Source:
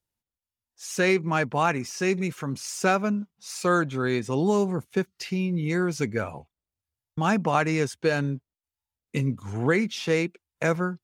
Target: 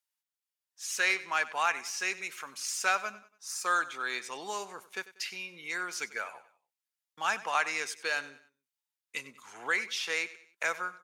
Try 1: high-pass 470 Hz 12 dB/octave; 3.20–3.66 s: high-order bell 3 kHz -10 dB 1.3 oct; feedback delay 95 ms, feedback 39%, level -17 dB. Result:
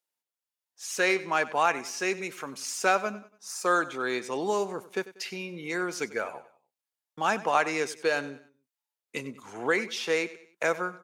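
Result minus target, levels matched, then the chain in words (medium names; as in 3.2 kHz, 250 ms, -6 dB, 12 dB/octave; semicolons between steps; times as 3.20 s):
500 Hz band +9.0 dB
high-pass 1.2 kHz 12 dB/octave; 3.20–3.66 s: high-order bell 3 kHz -10 dB 1.3 oct; feedback delay 95 ms, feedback 39%, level -17 dB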